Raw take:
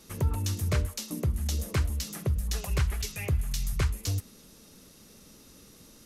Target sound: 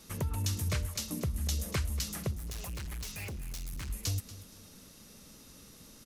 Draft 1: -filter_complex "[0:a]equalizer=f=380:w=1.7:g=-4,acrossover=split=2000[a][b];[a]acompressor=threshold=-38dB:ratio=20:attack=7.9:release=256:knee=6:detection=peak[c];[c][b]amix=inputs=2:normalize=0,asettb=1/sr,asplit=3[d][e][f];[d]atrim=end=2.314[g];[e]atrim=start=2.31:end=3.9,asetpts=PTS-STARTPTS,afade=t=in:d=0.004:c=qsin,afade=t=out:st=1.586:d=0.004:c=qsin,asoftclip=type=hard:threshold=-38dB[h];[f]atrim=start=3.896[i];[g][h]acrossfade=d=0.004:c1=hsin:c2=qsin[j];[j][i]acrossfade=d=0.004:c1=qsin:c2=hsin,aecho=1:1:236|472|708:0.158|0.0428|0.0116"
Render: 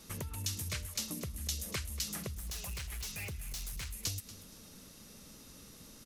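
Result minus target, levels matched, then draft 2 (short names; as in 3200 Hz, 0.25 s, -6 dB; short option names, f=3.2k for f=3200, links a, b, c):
compressor: peak gain reduction +9.5 dB
-filter_complex "[0:a]equalizer=f=380:w=1.7:g=-4,acrossover=split=2000[a][b];[a]acompressor=threshold=-28dB:ratio=20:attack=7.9:release=256:knee=6:detection=peak[c];[c][b]amix=inputs=2:normalize=0,asettb=1/sr,asplit=3[d][e][f];[d]atrim=end=2.314[g];[e]atrim=start=2.31:end=3.9,asetpts=PTS-STARTPTS,afade=t=in:d=0.004:c=qsin,afade=t=out:st=1.586:d=0.004:c=qsin,asoftclip=type=hard:threshold=-38dB[h];[f]atrim=start=3.896[i];[g][h]acrossfade=d=0.004:c1=hsin:c2=qsin[j];[j][i]acrossfade=d=0.004:c1=qsin:c2=hsin,aecho=1:1:236|472|708:0.158|0.0428|0.0116"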